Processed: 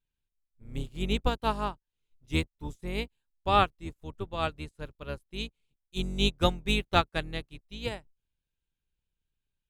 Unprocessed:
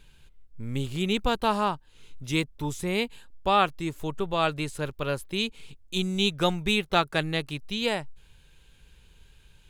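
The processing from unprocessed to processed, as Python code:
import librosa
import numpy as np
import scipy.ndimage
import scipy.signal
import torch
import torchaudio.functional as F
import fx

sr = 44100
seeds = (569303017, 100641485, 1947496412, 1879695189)

y = fx.octave_divider(x, sr, octaves=2, level_db=3.0)
y = fx.upward_expand(y, sr, threshold_db=-40.0, expansion=2.5)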